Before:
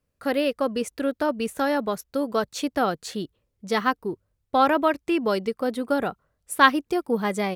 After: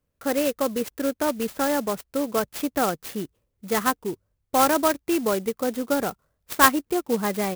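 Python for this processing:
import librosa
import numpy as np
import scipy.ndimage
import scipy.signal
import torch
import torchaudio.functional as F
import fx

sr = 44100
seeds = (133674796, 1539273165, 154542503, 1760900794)

y = fx.clock_jitter(x, sr, seeds[0], jitter_ms=0.063)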